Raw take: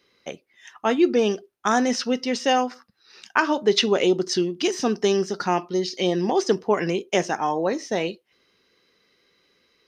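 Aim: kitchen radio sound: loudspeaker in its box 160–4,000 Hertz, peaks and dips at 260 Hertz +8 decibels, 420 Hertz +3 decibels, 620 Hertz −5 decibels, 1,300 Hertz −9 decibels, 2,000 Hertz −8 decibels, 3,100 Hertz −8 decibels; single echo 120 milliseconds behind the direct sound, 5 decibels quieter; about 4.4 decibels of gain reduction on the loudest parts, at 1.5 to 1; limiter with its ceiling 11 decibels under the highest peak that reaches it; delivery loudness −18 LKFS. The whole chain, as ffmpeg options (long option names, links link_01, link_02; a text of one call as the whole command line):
ffmpeg -i in.wav -af "acompressor=threshold=-26dB:ratio=1.5,alimiter=limit=-18.5dB:level=0:latency=1,highpass=160,equalizer=frequency=260:width_type=q:width=4:gain=8,equalizer=frequency=420:width_type=q:width=4:gain=3,equalizer=frequency=620:width_type=q:width=4:gain=-5,equalizer=frequency=1300:width_type=q:width=4:gain=-9,equalizer=frequency=2000:width_type=q:width=4:gain=-8,equalizer=frequency=3100:width_type=q:width=4:gain=-8,lowpass=frequency=4000:width=0.5412,lowpass=frequency=4000:width=1.3066,aecho=1:1:120:0.562,volume=9dB" out.wav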